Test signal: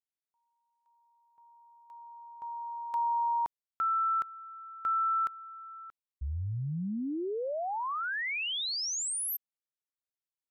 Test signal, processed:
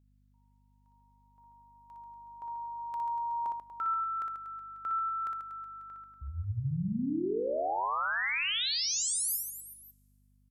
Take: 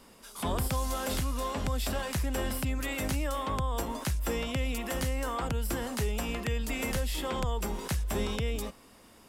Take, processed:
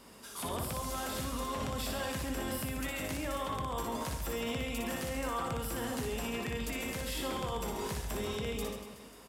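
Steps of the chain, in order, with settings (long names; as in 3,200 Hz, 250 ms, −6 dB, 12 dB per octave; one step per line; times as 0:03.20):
high-pass filter 89 Hz 12 dB per octave
brickwall limiter −30 dBFS
reverse bouncing-ball delay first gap 60 ms, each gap 1.3×, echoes 5
mains hum 50 Hz, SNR 30 dB
coupled-rooms reverb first 0.25 s, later 1.7 s, from −17 dB, DRR 17 dB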